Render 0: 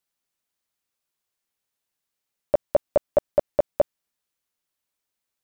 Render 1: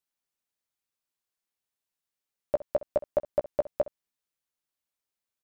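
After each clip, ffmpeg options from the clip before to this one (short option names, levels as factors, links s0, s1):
-af "aecho=1:1:15|64:0.141|0.126,volume=0.473"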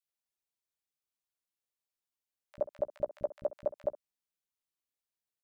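-filter_complex "[0:a]acrossover=split=240|1500[s0][s1][s2];[s0]adelay=40[s3];[s1]adelay=70[s4];[s3][s4][s2]amix=inputs=3:normalize=0,volume=0.531"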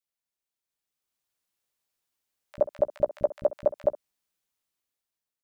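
-af "dynaudnorm=f=280:g=7:m=2.82"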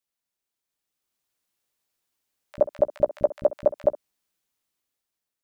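-af "equalizer=f=290:w=1.5:g=2.5,volume=1.41"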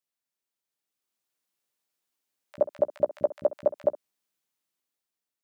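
-af "highpass=130,volume=0.668"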